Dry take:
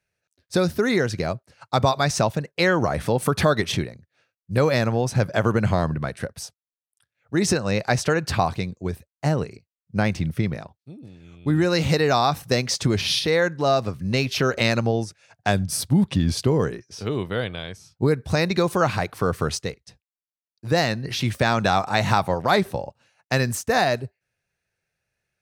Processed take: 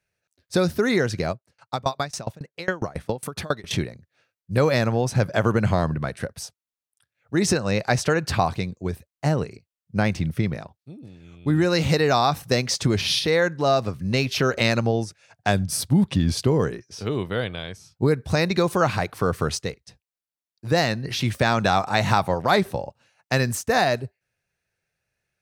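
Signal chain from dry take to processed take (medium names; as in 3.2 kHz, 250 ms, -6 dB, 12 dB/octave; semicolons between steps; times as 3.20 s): 1.31–3.71 s: sawtooth tremolo in dB decaying 7.3 Hz, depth 27 dB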